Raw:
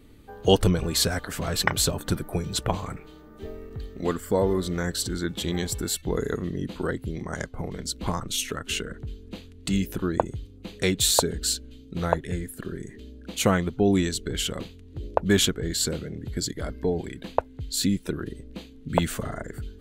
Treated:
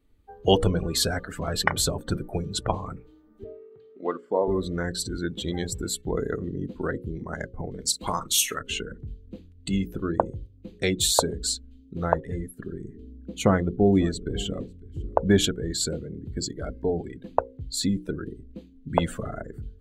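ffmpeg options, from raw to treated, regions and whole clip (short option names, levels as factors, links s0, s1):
-filter_complex "[0:a]asettb=1/sr,asplit=3[s0][s1][s2];[s0]atrim=end=3.444[s3];[s1]atrim=start=3.44:end=4.48,asetpts=PTS-STARTPTS,afade=t=in:d=0.004:c=qsin,afade=t=out:st=1.036:d=0.004:c=qsin,highpass=330,lowpass=3500,bandreject=f=1800:w=13[s4];[s2]atrim=start=4.476[s5];[s3][s4]acrossfade=d=0.004:c1=hsin:c2=qsin[s6];[s6][s5]acrossfade=d=0.004:c1=qsin:c2=hsin,asettb=1/sr,asplit=3[s7][s8][s9];[s7]atrim=end=7.804[s10];[s8]atrim=start=7.8:end=8.61,asetpts=PTS-STARTPTS,afade=t=in:d=0.004:c=qsin,afade=t=out:st=0.806:d=0.004:c=qsin,aemphasis=mode=production:type=50fm,asplit=2[s11][s12];[s12]highpass=f=720:p=1,volume=2.24,asoftclip=type=tanh:threshold=0.501[s13];[s11][s13]amix=inputs=2:normalize=0,lowpass=f=6300:p=1,volume=0.501,asplit=2[s14][s15];[s15]adelay=41,volume=0.266[s16];[s14][s16]amix=inputs=2:normalize=0,atrim=end_sample=35721[s17];[s9]atrim=start=8.606[s18];[s10][s17]acrossfade=d=0.004:c1=hsin:c2=qsin[s19];[s19][s18]acrossfade=d=0.004:c1=qsin:c2=hsin,asettb=1/sr,asplit=3[s20][s21][s22];[s20]atrim=end=12.834[s23];[s21]atrim=start=12.83:end=15.44,asetpts=PTS-STARTPTS,afade=t=in:d=0.004:c=qsin,afade=t=out:st=2.606:d=0.004:c=qsin,tiltshelf=f=700:g=3.5,aecho=1:1:550:0.119,atrim=end_sample=115101[s24];[s22]atrim=start=15.436[s25];[s23][s24]acrossfade=d=0.004:c1=hsin:c2=qsin[s26];[s26][s25]acrossfade=d=0.004:c1=qsin:c2=hsin,afftdn=nr=17:nf=-34,equalizer=f=850:t=o:w=2.3:g=2.5,bandreject=f=60:t=h:w=6,bandreject=f=120:t=h:w=6,bandreject=f=180:t=h:w=6,bandreject=f=240:t=h:w=6,bandreject=f=300:t=h:w=6,bandreject=f=360:t=h:w=6,bandreject=f=420:t=h:w=6,bandreject=f=480:t=h:w=6,bandreject=f=540:t=h:w=6,volume=0.891"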